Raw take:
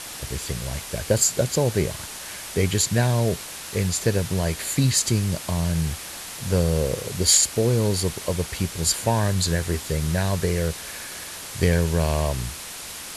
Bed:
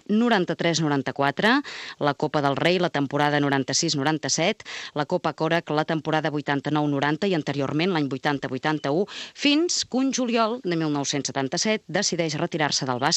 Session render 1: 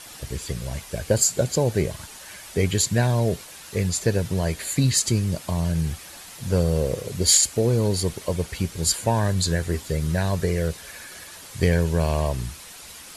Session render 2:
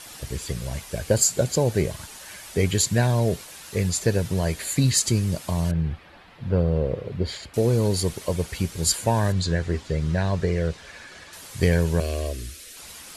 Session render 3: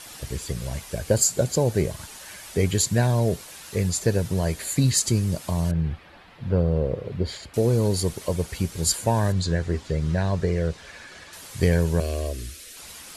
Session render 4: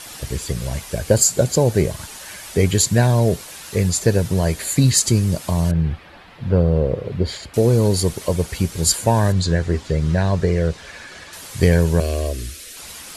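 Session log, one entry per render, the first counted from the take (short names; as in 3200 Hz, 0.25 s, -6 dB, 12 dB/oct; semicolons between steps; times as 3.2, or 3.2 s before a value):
denoiser 8 dB, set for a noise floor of -36 dBFS
5.71–7.54 air absorption 400 m; 9.32–11.33 air absorption 100 m; 12–12.77 fixed phaser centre 370 Hz, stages 4
dynamic EQ 2600 Hz, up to -3 dB, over -41 dBFS, Q 0.75
gain +5.5 dB; limiter -1 dBFS, peak gain reduction 1 dB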